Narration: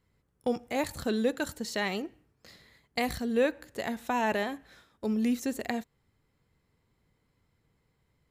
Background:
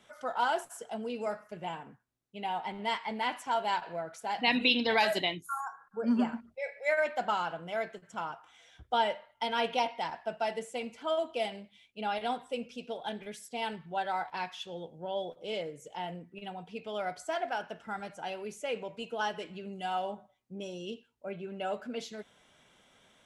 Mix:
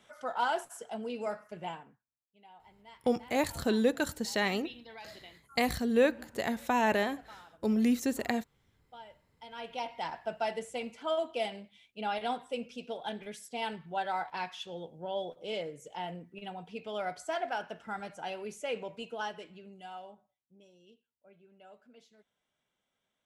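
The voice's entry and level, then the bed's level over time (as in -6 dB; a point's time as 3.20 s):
2.60 s, +1.0 dB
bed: 1.69 s -1 dB
2.26 s -22 dB
9.22 s -22 dB
10.09 s -0.5 dB
18.90 s -0.5 dB
20.73 s -20.5 dB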